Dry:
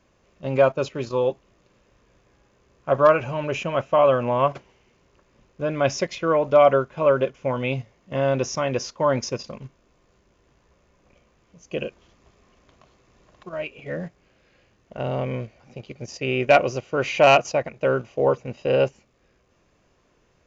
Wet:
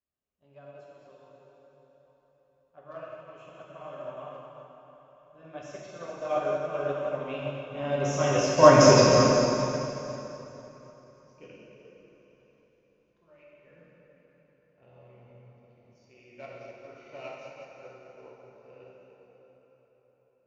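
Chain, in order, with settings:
source passing by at 0:08.99, 16 m/s, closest 4.5 metres
dense smooth reverb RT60 4.8 s, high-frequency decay 0.8×, DRR −7 dB
expander for the loud parts 1.5 to 1, over −45 dBFS
level +7 dB

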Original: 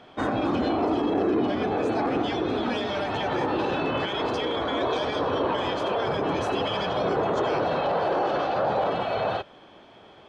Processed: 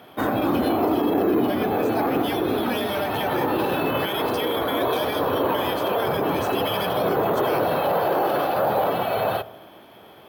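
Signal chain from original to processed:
high-pass filter 70 Hz
on a send: delay with a low-pass on its return 64 ms, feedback 65%, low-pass 1,100 Hz, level −17 dB
on the sum: bad sample-rate conversion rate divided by 3×, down none, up hold
level +3 dB

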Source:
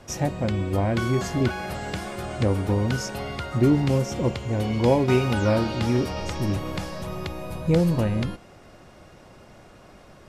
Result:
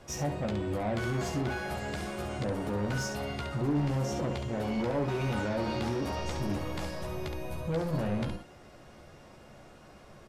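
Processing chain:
dynamic equaliser 730 Hz, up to +5 dB, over −35 dBFS, Q 0.83
brickwall limiter −15 dBFS, peak gain reduction 9.5 dB
soft clipping −23 dBFS, distortion −12 dB
ambience of single reflections 14 ms −5 dB, 68 ms −6 dB
level −5.5 dB

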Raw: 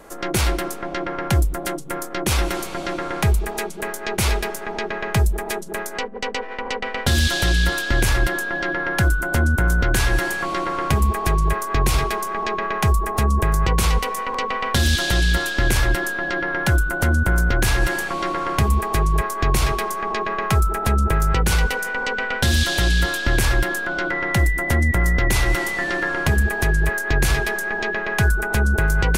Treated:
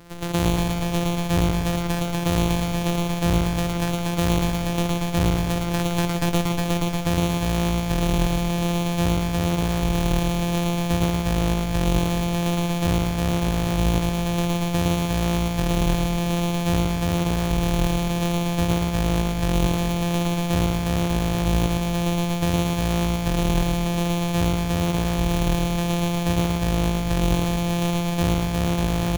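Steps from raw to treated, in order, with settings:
samples sorted by size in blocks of 256 samples
speech leveller 0.5 s
reverse bouncing-ball delay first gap 110 ms, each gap 1.1×, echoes 5
level −5.5 dB

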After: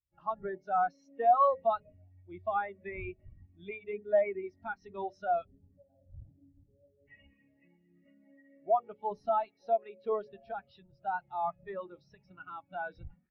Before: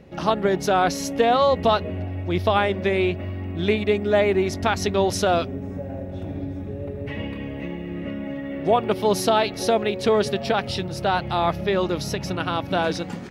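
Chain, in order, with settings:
wind on the microphone 96 Hz −33 dBFS
guitar amp tone stack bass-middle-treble 5-5-5
hum removal 53.16 Hz, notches 11
mid-hump overdrive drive 17 dB, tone 1,100 Hz, clips at −19 dBFS
every bin expanded away from the loudest bin 2.5 to 1
level +6.5 dB

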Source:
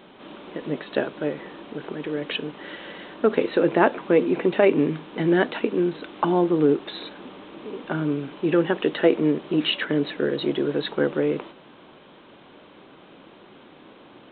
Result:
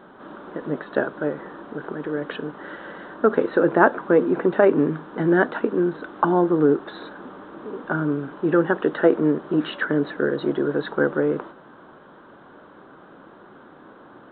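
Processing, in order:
high shelf with overshoot 1,900 Hz −7.5 dB, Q 3
level +1 dB

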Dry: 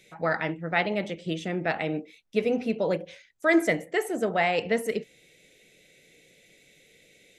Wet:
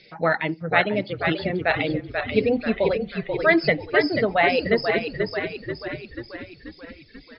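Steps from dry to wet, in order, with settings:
hearing-aid frequency compression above 4,000 Hz 4 to 1
0:01.56–0:02.00: high-shelf EQ 3,500 Hz +7 dB
0:02.84–0:03.68: high-pass filter 390 Hz
echo with shifted repeats 486 ms, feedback 58%, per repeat −38 Hz, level −5 dB
reverb reduction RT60 1.5 s
level +5.5 dB

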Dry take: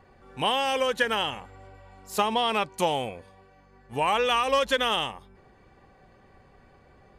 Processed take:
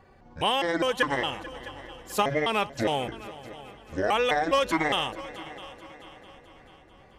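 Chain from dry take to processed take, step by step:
pitch shifter gated in a rhythm −8 semitones, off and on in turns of 205 ms
echo machine with several playback heads 219 ms, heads second and third, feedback 50%, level −18 dB

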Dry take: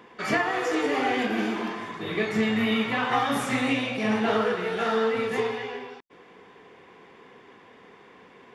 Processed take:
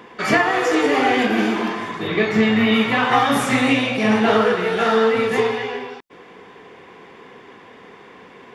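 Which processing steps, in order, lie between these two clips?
0:02.07–0:02.74: parametric band 10,000 Hz −13 dB 0.74 octaves
level +8 dB

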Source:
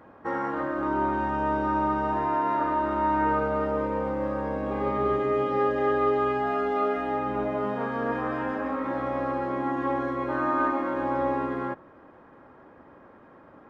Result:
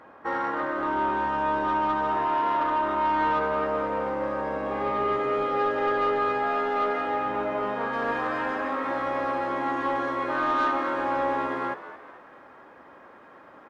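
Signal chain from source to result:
high-shelf EQ 3,500 Hz +4.5 dB, from 0:07.93 +11.5 dB
mid-hump overdrive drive 12 dB, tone 4,100 Hz, clips at −13 dBFS
echo with shifted repeats 218 ms, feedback 46%, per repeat +79 Hz, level −14 dB
level −3 dB

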